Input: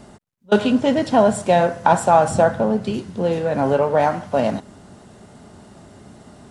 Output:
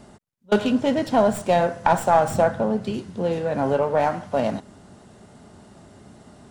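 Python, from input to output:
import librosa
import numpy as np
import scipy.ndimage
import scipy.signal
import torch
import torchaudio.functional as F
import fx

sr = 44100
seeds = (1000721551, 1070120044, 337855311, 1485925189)

y = fx.tracing_dist(x, sr, depth_ms=0.062)
y = y * librosa.db_to_amplitude(-3.5)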